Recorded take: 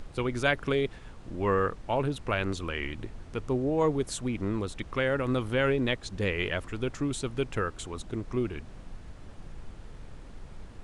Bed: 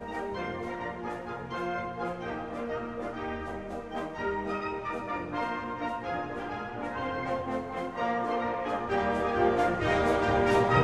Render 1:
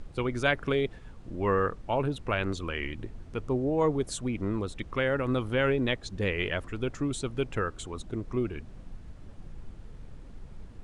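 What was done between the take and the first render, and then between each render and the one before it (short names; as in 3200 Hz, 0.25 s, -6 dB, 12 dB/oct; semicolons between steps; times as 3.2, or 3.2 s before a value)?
denoiser 6 dB, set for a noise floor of -47 dBFS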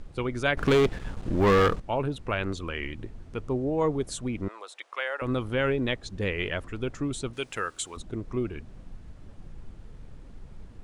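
0.57–1.8 sample leveller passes 3; 4.48–5.22 HPF 620 Hz 24 dB/oct; 7.33–7.97 tilt +3.5 dB/oct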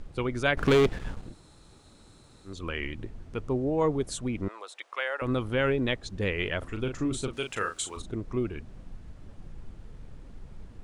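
1.23–2.55 room tone, crossfade 0.24 s; 6.58–8.12 doubler 38 ms -6.5 dB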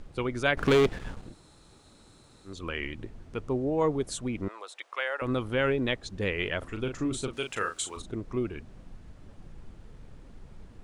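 low shelf 140 Hz -4 dB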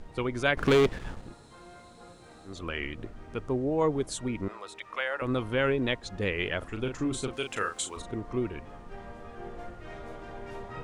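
add bed -18 dB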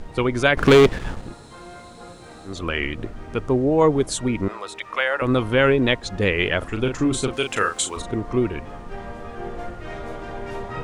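gain +9.5 dB; limiter -3 dBFS, peak gain reduction 3 dB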